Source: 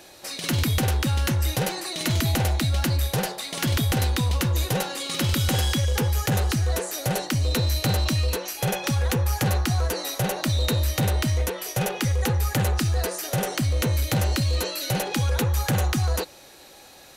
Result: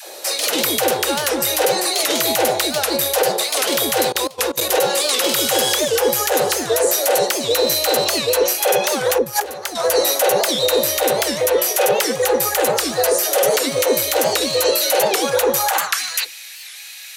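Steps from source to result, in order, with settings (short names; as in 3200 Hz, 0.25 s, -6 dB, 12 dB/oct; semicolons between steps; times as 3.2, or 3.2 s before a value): high shelf 6500 Hz +8 dB; 9.18–9.76 negative-ratio compressor -29 dBFS, ratio -0.5; 13.35–13.86 comb 7.3 ms, depth 70%; dispersion lows, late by 0.142 s, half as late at 300 Hz; 4.12–4.73 level quantiser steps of 22 dB; high-pass sweep 480 Hz -> 2200 Hz, 15.55–16.05; maximiser +14.5 dB; record warp 78 rpm, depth 160 cents; gain -5.5 dB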